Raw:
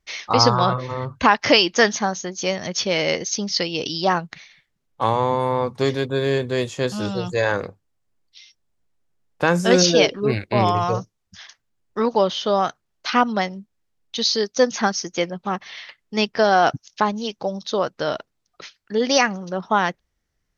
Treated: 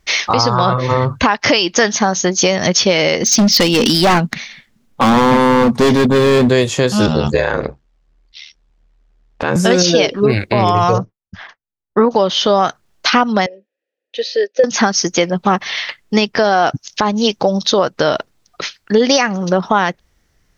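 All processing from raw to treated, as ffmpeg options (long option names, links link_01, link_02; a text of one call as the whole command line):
ffmpeg -i in.wav -filter_complex "[0:a]asettb=1/sr,asplit=3[link_01][link_02][link_03];[link_01]atrim=end=3.234[link_04];[link_02]atrim=start=3.23:end=6.49,asetpts=PTS-STARTPTS,afade=type=in:duration=0.004:curve=qsin,afade=type=out:start_time=3.256:duration=0.004:curve=qsin,equalizer=frequency=230:width=4.1:gain=14.5,asoftclip=type=hard:threshold=-21.5dB[link_05];[link_03]atrim=start=6.486[link_06];[link_04][link_05]acrossfade=duration=0.004:curve1=hsin:curve2=qsin[link_07];[link_07][link_06]acrossfade=duration=0.004:curve1=qsin:curve2=hsin,asettb=1/sr,asplit=3[link_08][link_09][link_10];[link_08]atrim=end=7.064[link_11];[link_09]atrim=start=7.06:end=9.56,asetpts=PTS-STARTPTS,afade=type=in:duration=0.004:curve=qsin,afade=type=out:start_time=2.496:duration=0.004:curve=qsin,lowpass=4700,aeval=exprs='val(0)*sin(2*PI*38*n/s)':channel_layout=same[link_12];[link_10]atrim=start=9.556[link_13];[link_11][link_12]acrossfade=duration=0.004:curve1=hsin:curve2=qsin[link_14];[link_14][link_13]acrossfade=duration=0.004:curve1=qsin:curve2=hsin,asettb=1/sr,asplit=3[link_15][link_16][link_17];[link_15]atrim=end=10.984[link_18];[link_16]atrim=start=10.98:end=12.11,asetpts=PTS-STARTPTS,afade=type=in:duration=0.004:curve=qsin,afade=type=out:start_time=1.126:duration=0.004:curve=qsin,lowpass=1500,agate=range=-33dB:threshold=-53dB:ratio=3:release=100:detection=peak[link_19];[link_17]atrim=start=12.106[link_20];[link_18][link_19]acrossfade=duration=0.004:curve1=hsin:curve2=qsin[link_21];[link_21][link_20]acrossfade=duration=0.004:curve1=qsin:curve2=hsin,asettb=1/sr,asplit=3[link_22][link_23][link_24];[link_22]atrim=end=13.464[link_25];[link_23]atrim=start=13.46:end=14.64,asetpts=PTS-STARTPTS,afade=type=in:duration=0.004:curve=qsin,afade=type=out:start_time=1.176:duration=0.004:curve=qsin,asplit=3[link_26][link_27][link_28];[link_26]bandpass=frequency=530:width_type=q:width=8,volume=0dB[link_29];[link_27]bandpass=frequency=1840:width_type=q:width=8,volume=-6dB[link_30];[link_28]bandpass=frequency=2480:width_type=q:width=8,volume=-9dB[link_31];[link_29][link_30][link_31]amix=inputs=3:normalize=0,lowshelf=frequency=210:width_type=q:width=1.5:gain=-12.5[link_32];[link_24]atrim=start=14.636[link_33];[link_25][link_32]acrossfade=duration=0.004:curve1=hsin:curve2=qsin[link_34];[link_34][link_33]acrossfade=duration=0.004:curve1=qsin:curve2=hsin,acompressor=threshold=-24dB:ratio=6,alimiter=level_in=16.5dB:limit=-1dB:release=50:level=0:latency=1,volume=-1dB" out.wav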